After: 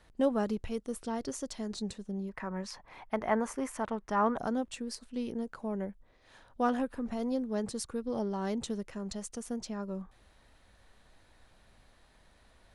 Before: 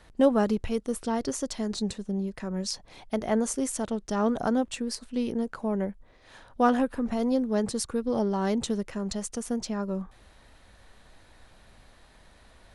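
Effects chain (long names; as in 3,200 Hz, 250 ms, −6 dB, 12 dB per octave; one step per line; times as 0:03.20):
0:02.29–0:04.38: octave-band graphic EQ 1,000/2,000/4,000/8,000 Hz +11/+8/−5/−7 dB
level −7 dB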